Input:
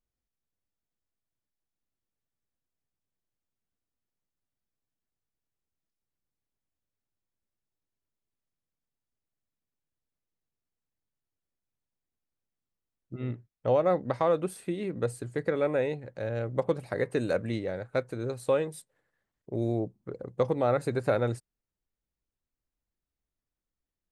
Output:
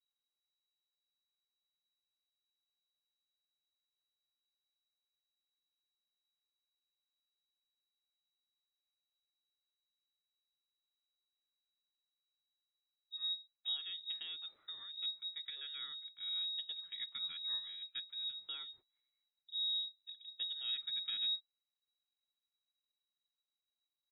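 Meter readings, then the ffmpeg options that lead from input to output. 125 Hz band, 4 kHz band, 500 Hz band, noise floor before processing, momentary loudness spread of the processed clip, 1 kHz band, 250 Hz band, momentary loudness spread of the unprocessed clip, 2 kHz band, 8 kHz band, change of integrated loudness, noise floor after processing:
under -40 dB, +15.5 dB, under -40 dB, under -85 dBFS, 10 LU, -30.0 dB, under -40 dB, 11 LU, -17.0 dB, under -25 dB, -9.5 dB, under -85 dBFS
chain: -af "firequalizer=gain_entry='entry(120,0);entry(260,-20);entry(1000,-22);entry(2600,-8)':delay=0.05:min_phase=1,lowpass=f=3.3k:t=q:w=0.5098,lowpass=f=3.3k:t=q:w=0.6013,lowpass=f=3.3k:t=q:w=0.9,lowpass=f=3.3k:t=q:w=2.563,afreqshift=-3900,volume=-3dB"

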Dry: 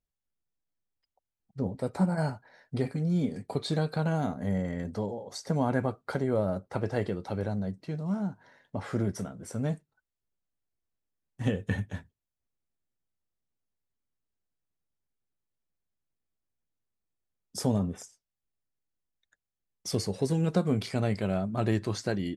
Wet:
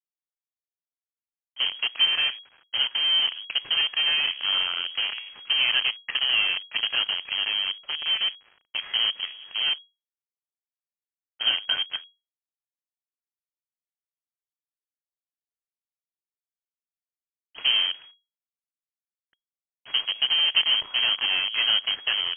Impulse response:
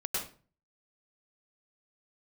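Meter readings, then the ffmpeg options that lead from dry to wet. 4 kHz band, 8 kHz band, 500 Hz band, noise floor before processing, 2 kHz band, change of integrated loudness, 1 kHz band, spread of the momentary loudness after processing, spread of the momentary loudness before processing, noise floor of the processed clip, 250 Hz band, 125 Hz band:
+26.0 dB, under -35 dB, -16.5 dB, under -85 dBFS, +15.0 dB, +8.5 dB, -1.5 dB, 8 LU, 11 LU, under -85 dBFS, under -25 dB, under -30 dB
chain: -af "acrusher=bits=6:dc=4:mix=0:aa=0.000001,lowpass=f=2.8k:t=q:w=0.5098,lowpass=f=2.8k:t=q:w=0.6013,lowpass=f=2.8k:t=q:w=0.9,lowpass=f=2.8k:t=q:w=2.563,afreqshift=-3300,volume=4dB"

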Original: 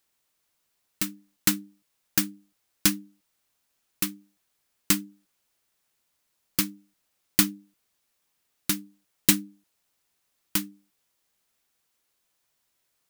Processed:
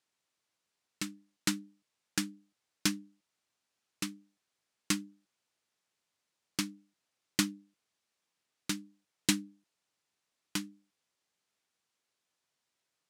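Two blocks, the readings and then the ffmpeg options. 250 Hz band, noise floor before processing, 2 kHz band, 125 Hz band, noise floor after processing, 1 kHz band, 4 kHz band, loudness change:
-5.5 dB, -76 dBFS, -5.5 dB, -6.0 dB, -85 dBFS, -5.5 dB, -6.0 dB, -9.5 dB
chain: -af "highpass=100,lowpass=7.7k,volume=-5.5dB"

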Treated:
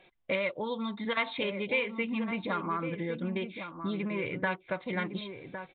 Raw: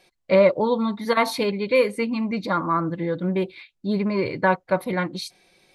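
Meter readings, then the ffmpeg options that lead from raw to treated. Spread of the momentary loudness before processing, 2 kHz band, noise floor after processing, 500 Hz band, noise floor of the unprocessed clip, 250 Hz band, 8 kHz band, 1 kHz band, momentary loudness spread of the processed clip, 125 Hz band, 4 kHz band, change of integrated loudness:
9 LU, -5.0 dB, -63 dBFS, -13.0 dB, -73 dBFS, -9.5 dB, under -35 dB, -11.0 dB, 7 LU, -9.5 dB, -6.0 dB, -10.5 dB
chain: -filter_complex "[0:a]acrossover=split=2100[a][b];[a]acompressor=threshold=-32dB:ratio=6[c];[c][b]amix=inputs=2:normalize=0,asplit=2[d][e];[e]adelay=1108,volume=-8dB,highshelf=f=4k:g=-24.9[f];[d][f]amix=inputs=2:normalize=0,aresample=8000,aresample=44100"

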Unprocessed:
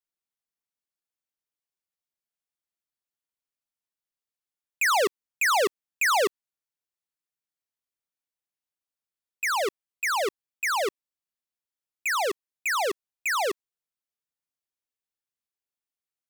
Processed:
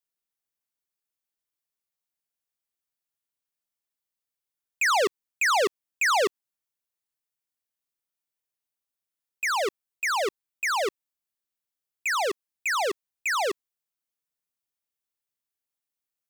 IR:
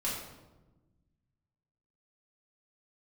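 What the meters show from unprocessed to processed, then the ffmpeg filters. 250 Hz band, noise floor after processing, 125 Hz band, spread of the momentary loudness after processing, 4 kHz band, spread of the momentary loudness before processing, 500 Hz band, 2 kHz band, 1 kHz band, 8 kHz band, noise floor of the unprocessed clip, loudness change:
0.0 dB, under -85 dBFS, n/a, 9 LU, +0.5 dB, 9 LU, 0.0 dB, 0.0 dB, 0.0 dB, -1.0 dB, under -85 dBFS, 0.0 dB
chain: -filter_complex "[0:a]highshelf=f=9.6k:g=6,acrossover=split=8100[a][b];[b]acompressor=threshold=-43dB:ratio=4:attack=1:release=60[c];[a][c]amix=inputs=2:normalize=0"

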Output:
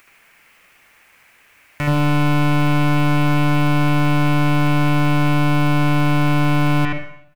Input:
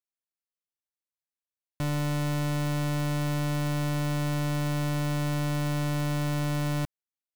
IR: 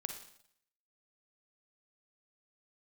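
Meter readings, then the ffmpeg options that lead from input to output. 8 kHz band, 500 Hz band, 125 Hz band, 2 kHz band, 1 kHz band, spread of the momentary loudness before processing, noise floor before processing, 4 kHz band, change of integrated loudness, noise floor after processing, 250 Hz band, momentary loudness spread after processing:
+2.0 dB, +9.0 dB, +10.5 dB, +14.5 dB, +15.0 dB, 1 LU, under -85 dBFS, +10.0 dB, +11.5 dB, -53 dBFS, +13.0 dB, 2 LU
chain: -filter_complex "[0:a]firequalizer=gain_entry='entry(400,0);entry(2300,13);entry(3600,-4)':delay=0.05:min_phase=1,acompressor=mode=upward:threshold=-36dB:ratio=2.5,asplit=2[a][b];[1:a]atrim=start_sample=2205,lowpass=3.5k,adelay=75[c];[b][c]afir=irnorm=-1:irlink=0,volume=2.5dB[d];[a][d]amix=inputs=2:normalize=0,volume=6.5dB"

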